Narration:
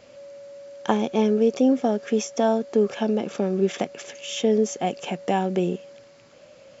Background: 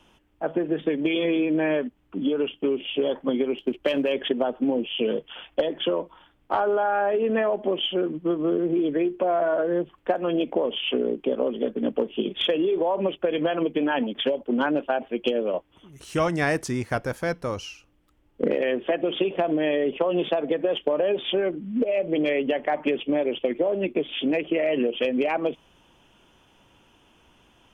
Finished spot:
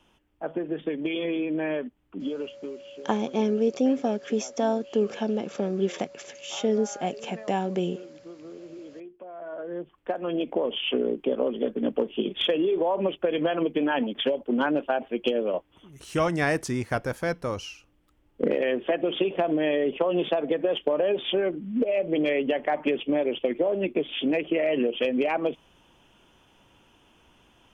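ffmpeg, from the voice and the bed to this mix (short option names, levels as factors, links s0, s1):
-filter_complex "[0:a]adelay=2200,volume=0.631[s0];[1:a]volume=4.73,afade=t=out:st=2.09:d=0.8:silence=0.188365,afade=t=in:st=9.33:d=1.48:silence=0.11885[s1];[s0][s1]amix=inputs=2:normalize=0"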